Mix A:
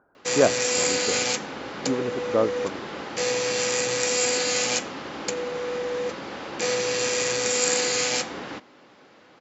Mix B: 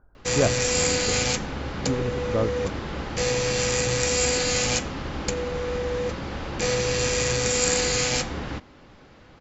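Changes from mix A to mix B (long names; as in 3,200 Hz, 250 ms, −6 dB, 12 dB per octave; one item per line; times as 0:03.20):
speech −4.5 dB
master: remove high-pass filter 270 Hz 12 dB per octave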